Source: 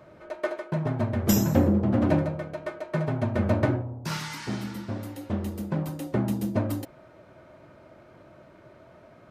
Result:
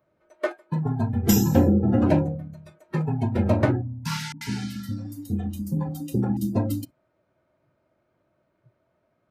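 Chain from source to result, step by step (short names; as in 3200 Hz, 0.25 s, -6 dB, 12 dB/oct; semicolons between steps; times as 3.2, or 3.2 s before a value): spectral noise reduction 22 dB; 4.32–6.37 bands offset in time lows, highs 90 ms, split 450 Hz; gain +3 dB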